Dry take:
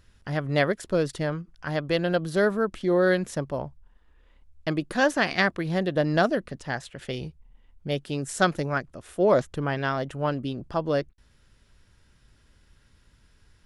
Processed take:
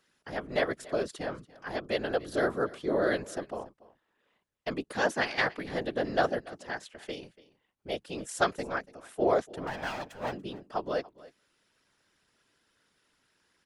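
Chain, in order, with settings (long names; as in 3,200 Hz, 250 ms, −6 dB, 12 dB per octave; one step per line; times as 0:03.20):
0:09.67–0:10.33: lower of the sound and its delayed copy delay 1.2 ms
high-pass filter 280 Hz 12 dB per octave
random phases in short frames
single-tap delay 287 ms −20.5 dB
level −5 dB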